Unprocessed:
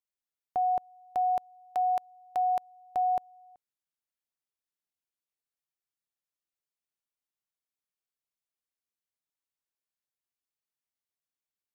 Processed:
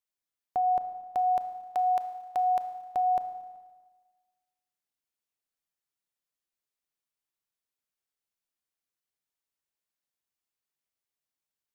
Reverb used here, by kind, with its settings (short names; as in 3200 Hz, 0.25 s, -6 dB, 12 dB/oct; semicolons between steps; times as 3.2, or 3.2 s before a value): Schroeder reverb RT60 1.4 s, combs from 25 ms, DRR 9.5 dB; gain +1 dB